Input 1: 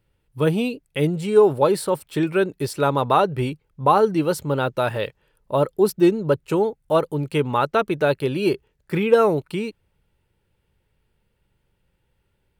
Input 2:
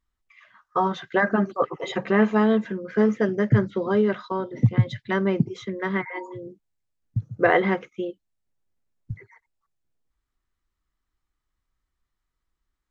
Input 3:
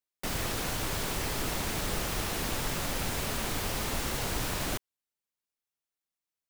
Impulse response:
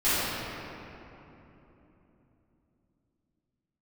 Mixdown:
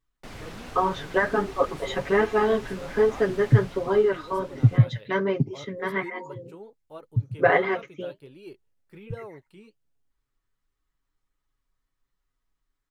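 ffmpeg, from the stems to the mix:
-filter_complex "[0:a]volume=-20dB[link_01];[1:a]aecho=1:1:7.2:0.76,volume=1.5dB[link_02];[2:a]aemphasis=mode=reproduction:type=50fm,volume=-3.5dB,afade=type=out:start_time=3.46:duration=0.64:silence=0.375837[link_03];[link_01][link_02][link_03]amix=inputs=3:normalize=0,flanger=delay=2.5:depth=7.4:regen=-53:speed=1.3:shape=sinusoidal"

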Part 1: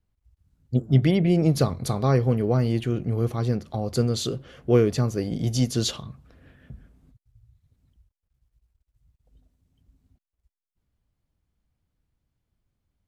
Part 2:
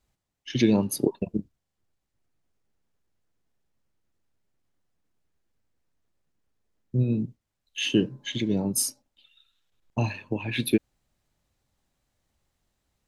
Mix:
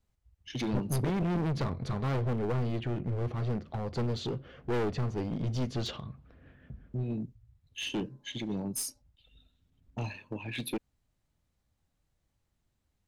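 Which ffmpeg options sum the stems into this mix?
ffmpeg -i stem1.wav -i stem2.wav -filter_complex "[0:a]lowpass=3000,volume=22dB,asoftclip=hard,volume=-22dB,volume=-3.5dB[link_01];[1:a]asoftclip=type=tanh:threshold=-18.5dB,volume=-7dB[link_02];[link_01][link_02]amix=inputs=2:normalize=0,aeval=exprs='clip(val(0),-1,0.0282)':channel_layout=same" out.wav

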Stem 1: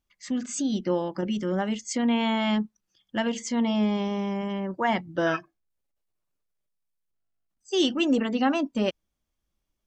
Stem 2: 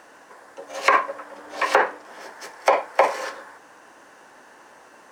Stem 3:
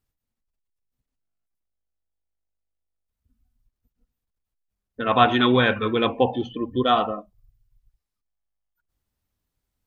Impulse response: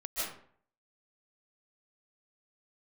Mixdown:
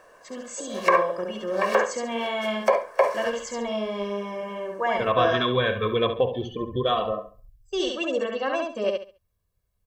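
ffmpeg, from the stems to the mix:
-filter_complex "[0:a]agate=range=-15dB:threshold=-42dB:ratio=16:detection=peak,highpass=340,volume=0.5dB,asplit=2[link_01][link_02];[link_02]volume=-3dB[link_03];[1:a]volume=-3.5dB,asplit=2[link_04][link_05];[link_05]volume=-14.5dB[link_06];[2:a]acompressor=threshold=-24dB:ratio=2.5,adynamicequalizer=threshold=0.00891:dfrequency=2600:dqfactor=0.7:tfrequency=2600:tqfactor=0.7:attack=5:release=100:ratio=0.375:range=3.5:mode=boostabove:tftype=highshelf,volume=1.5dB,asplit=2[link_07][link_08];[link_08]volume=-10.5dB[link_09];[link_03][link_06][link_09]amix=inputs=3:normalize=0,aecho=0:1:69|138|207|276:1|0.26|0.0676|0.0176[link_10];[link_01][link_04][link_07][link_10]amix=inputs=4:normalize=0,equalizer=frequency=4200:width=0.34:gain=-6.5,aecho=1:1:1.8:0.69"

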